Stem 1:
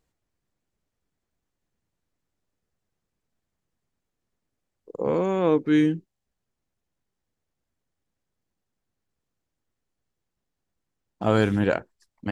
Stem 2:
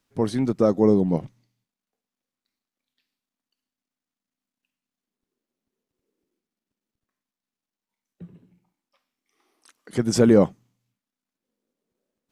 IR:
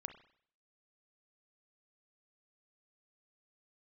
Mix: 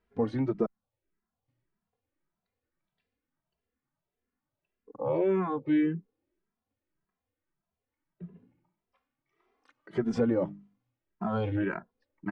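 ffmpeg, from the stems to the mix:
-filter_complex "[0:a]alimiter=limit=-15dB:level=0:latency=1:release=121,asplit=2[link_01][link_02];[link_02]afreqshift=-1.9[link_03];[link_01][link_03]amix=inputs=2:normalize=1,volume=3dB[link_04];[1:a]bandreject=frequency=50:width_type=h:width=6,bandreject=frequency=100:width_type=h:width=6,bandreject=frequency=150:width_type=h:width=6,bandreject=frequency=200:width_type=h:width=6,bandreject=frequency=250:width_type=h:width=6,bandreject=frequency=300:width_type=h:width=6,acompressor=threshold=-20dB:ratio=6,volume=0.5dB,asplit=3[link_05][link_06][link_07];[link_05]atrim=end=0.66,asetpts=PTS-STARTPTS,afade=type=out:start_time=0.656:duration=0.004:curve=hsin[link_08];[link_06]atrim=start=0.66:end=1.48,asetpts=PTS-STARTPTS,volume=0[link_09];[link_07]atrim=start=1.48,asetpts=PTS-STARTPTS,afade=type=in:duration=0.004:curve=hsin[link_10];[link_08][link_09][link_10]concat=n=3:v=0:a=1[link_11];[link_04][link_11]amix=inputs=2:normalize=0,lowpass=2100,lowshelf=frequency=140:gain=-4.5,asplit=2[link_12][link_13];[link_13]adelay=2.6,afreqshift=1.7[link_14];[link_12][link_14]amix=inputs=2:normalize=1"

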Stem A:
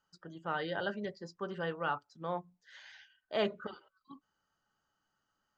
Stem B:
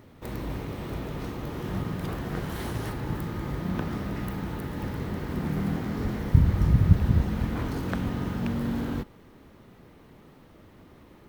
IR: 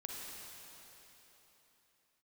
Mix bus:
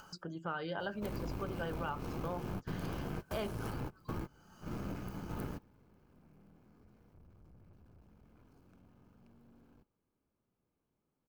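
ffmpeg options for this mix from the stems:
-filter_complex "[0:a]acompressor=mode=upward:threshold=-43dB:ratio=2.5,aphaser=in_gain=1:out_gain=1:delay=1.7:decay=0.26:speed=0.37:type=triangular,volume=2.5dB,asplit=2[link_01][link_02];[1:a]aeval=exprs='(tanh(28.2*val(0)+0.6)-tanh(0.6))/28.2':channel_layout=same,adelay=800,volume=0.5dB[link_03];[link_02]apad=whole_len=532946[link_04];[link_03][link_04]sidechaingate=range=-30dB:threshold=-57dB:ratio=16:detection=peak[link_05];[link_01][link_05]amix=inputs=2:normalize=0,equalizer=frequency=3600:width_type=o:width=0.34:gain=-7.5,bandreject=frequency=1900:width=5.1,acompressor=threshold=-35dB:ratio=5"

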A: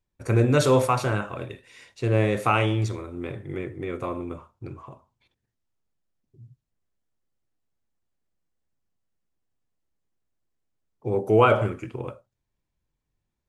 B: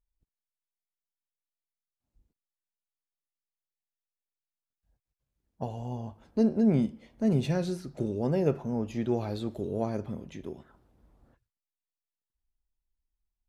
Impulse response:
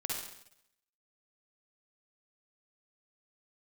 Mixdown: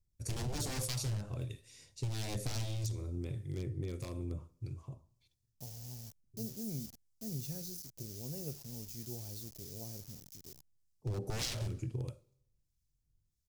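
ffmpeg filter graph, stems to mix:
-filter_complex "[0:a]lowshelf=frequency=420:gain=5.5,aeval=exprs='0.119*(abs(mod(val(0)/0.119+3,4)-2)-1)':channel_layout=same,acrossover=split=1500[link_01][link_02];[link_01]aeval=exprs='val(0)*(1-0.5/2+0.5/2*cos(2*PI*1.6*n/s))':channel_layout=same[link_03];[link_02]aeval=exprs='val(0)*(1-0.5/2-0.5/2*cos(2*PI*1.6*n/s))':channel_layout=same[link_04];[link_03][link_04]amix=inputs=2:normalize=0,volume=-1.5dB,asplit=2[link_05][link_06];[link_06]volume=-23.5dB[link_07];[1:a]acrusher=bits=6:mix=0:aa=0.000001,aexciter=amount=1.4:drive=6.3:freq=5100,volume=-10dB[link_08];[2:a]atrim=start_sample=2205[link_09];[link_07][link_09]afir=irnorm=-1:irlink=0[link_10];[link_05][link_08][link_10]amix=inputs=3:normalize=0,firequalizer=gain_entry='entry(120,0);entry(210,-9);entry(1200,-18);entry(5100,5)':delay=0.05:min_phase=1,acompressor=threshold=-33dB:ratio=6"

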